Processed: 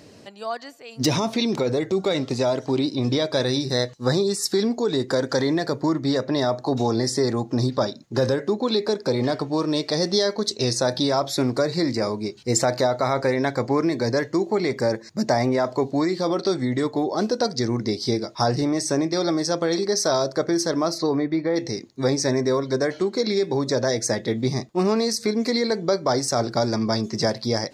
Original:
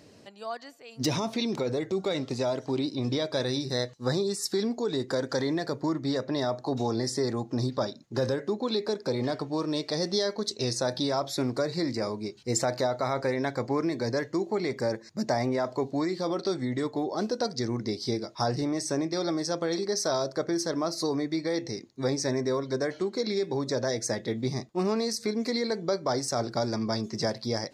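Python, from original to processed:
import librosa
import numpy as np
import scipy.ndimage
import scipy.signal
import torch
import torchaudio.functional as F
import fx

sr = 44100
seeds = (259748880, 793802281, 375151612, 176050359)

y = fx.lowpass(x, sr, hz=fx.line((20.97, 3700.0), (21.55, 1800.0)), slope=12, at=(20.97, 21.55), fade=0.02)
y = y * librosa.db_to_amplitude(6.5)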